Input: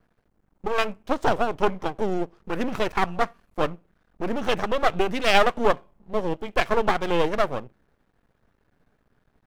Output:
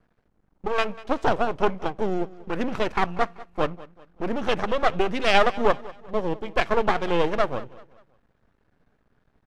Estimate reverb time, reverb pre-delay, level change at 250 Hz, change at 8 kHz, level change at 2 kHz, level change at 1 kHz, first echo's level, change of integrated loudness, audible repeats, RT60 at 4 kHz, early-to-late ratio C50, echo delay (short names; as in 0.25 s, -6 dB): none, none, 0.0 dB, -4.0 dB, -0.5 dB, 0.0 dB, -19.5 dB, 0.0 dB, 3, none, none, 0.193 s